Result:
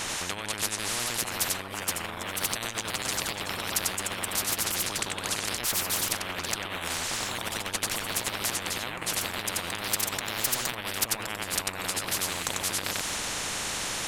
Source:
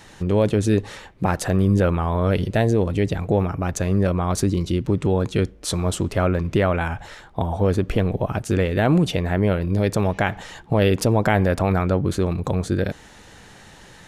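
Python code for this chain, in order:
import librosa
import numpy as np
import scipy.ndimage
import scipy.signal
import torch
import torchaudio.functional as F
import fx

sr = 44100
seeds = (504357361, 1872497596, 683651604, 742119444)

y = fx.graphic_eq_15(x, sr, hz=(400, 1000, 4000), db=(-6, 8, -5))
y = y + 10.0 ** (-3.0 / 20.0) * np.pad(y, (int(94 * sr / 1000.0), 0))[:len(y)]
y = fx.echo_pitch(y, sr, ms=626, semitones=2, count=2, db_per_echo=-6.0)
y = fx.over_compress(y, sr, threshold_db=-21.0, ratio=-0.5)
y = fx.spectral_comp(y, sr, ratio=10.0)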